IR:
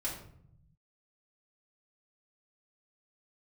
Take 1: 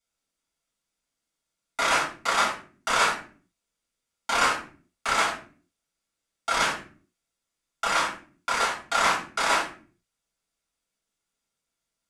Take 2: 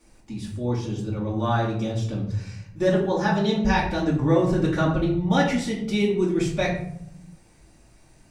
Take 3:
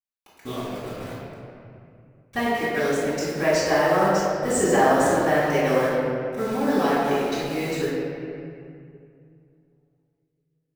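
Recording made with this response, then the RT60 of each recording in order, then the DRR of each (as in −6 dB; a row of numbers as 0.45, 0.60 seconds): 2; 0.45, 0.65, 2.4 seconds; −6.5, −6.0, −12.5 decibels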